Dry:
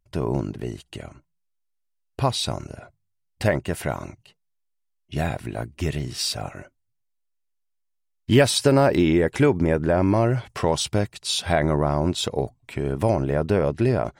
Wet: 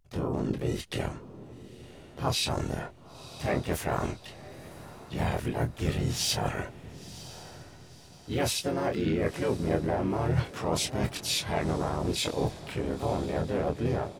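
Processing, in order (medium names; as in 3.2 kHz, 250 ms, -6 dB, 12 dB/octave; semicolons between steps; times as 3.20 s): fade out at the end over 0.92 s; reverse; compression 20:1, threshold -31 dBFS, peak gain reduction 21 dB; reverse; doubling 25 ms -6 dB; echo that smears into a reverb 1000 ms, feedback 43%, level -15.5 dB; harmony voices -7 st -6 dB, +4 st -4 dB; trim +3.5 dB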